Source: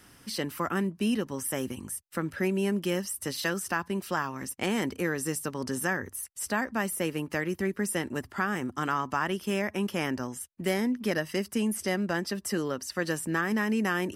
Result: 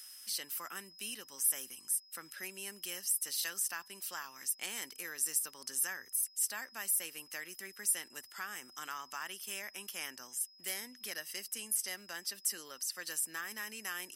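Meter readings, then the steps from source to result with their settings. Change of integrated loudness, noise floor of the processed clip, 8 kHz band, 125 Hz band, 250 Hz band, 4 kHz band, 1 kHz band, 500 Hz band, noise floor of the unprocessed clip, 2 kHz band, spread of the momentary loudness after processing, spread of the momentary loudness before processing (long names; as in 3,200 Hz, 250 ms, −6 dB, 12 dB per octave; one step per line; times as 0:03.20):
−6.0 dB, −60 dBFS, +3.0 dB, below −30 dB, −27.5 dB, −3.5 dB, −15.0 dB, −22.0 dB, −56 dBFS, −10.5 dB, 11 LU, 6 LU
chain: steady tone 5,100 Hz −57 dBFS
first difference
one half of a high-frequency compander encoder only
level +1.5 dB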